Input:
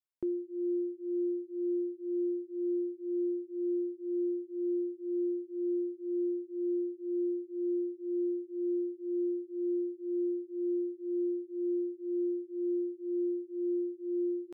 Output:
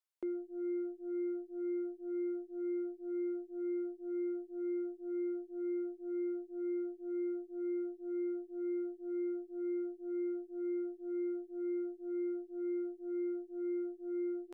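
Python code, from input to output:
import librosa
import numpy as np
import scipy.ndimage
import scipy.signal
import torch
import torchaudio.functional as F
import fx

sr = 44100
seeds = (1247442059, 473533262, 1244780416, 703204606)

y = scipy.signal.sosfilt(scipy.signal.butter(2, 420.0, 'highpass', fs=sr, output='sos'), x)
y = fx.cheby_harmonics(y, sr, harmonics=(2, 6), levels_db=(-44, -29), full_scale_db=-32.0)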